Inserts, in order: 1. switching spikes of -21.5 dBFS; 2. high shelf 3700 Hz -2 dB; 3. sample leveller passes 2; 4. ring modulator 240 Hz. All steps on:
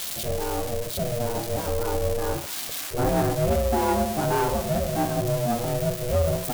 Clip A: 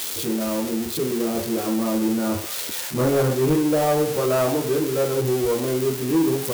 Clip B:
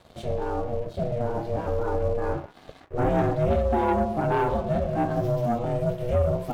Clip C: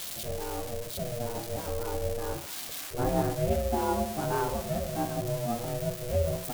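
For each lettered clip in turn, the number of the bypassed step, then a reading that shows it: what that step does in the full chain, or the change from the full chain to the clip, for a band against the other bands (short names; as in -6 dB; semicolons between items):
4, crest factor change -3.0 dB; 1, distortion -10 dB; 3, crest factor change +6.0 dB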